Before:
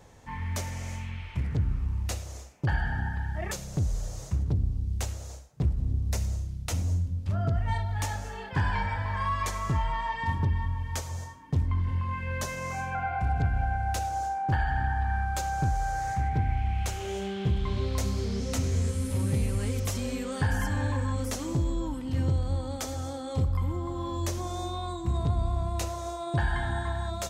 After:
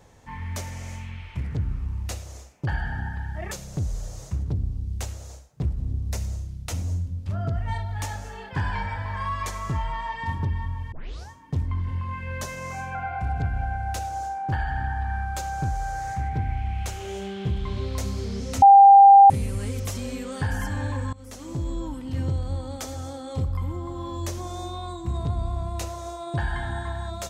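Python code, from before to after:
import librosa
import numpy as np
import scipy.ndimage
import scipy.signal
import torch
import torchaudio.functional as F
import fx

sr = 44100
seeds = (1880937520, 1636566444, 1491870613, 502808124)

y = fx.edit(x, sr, fx.tape_start(start_s=10.92, length_s=0.38),
    fx.bleep(start_s=18.62, length_s=0.68, hz=794.0, db=-7.0),
    fx.fade_in_from(start_s=21.13, length_s=0.61, floor_db=-21.5), tone=tone)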